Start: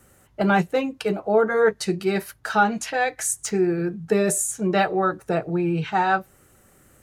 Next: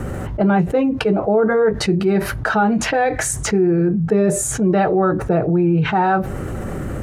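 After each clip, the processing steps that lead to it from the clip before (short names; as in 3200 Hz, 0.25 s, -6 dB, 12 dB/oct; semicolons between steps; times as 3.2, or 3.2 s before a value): LPF 1000 Hz 6 dB/oct; low shelf 410 Hz +5 dB; fast leveller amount 70%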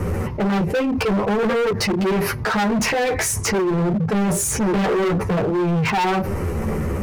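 ripple EQ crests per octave 0.84, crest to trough 8 dB; chorus voices 2, 0.52 Hz, delay 11 ms, depth 3.5 ms; overloaded stage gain 23 dB; gain +5.5 dB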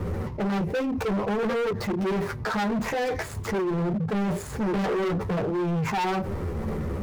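median filter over 15 samples; gain -6.5 dB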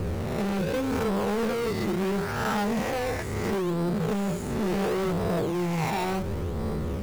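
spectral swells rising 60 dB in 1.45 s; in parallel at -3.5 dB: decimation with a swept rate 19×, swing 100% 0.71 Hz; on the sum: gain -7 dB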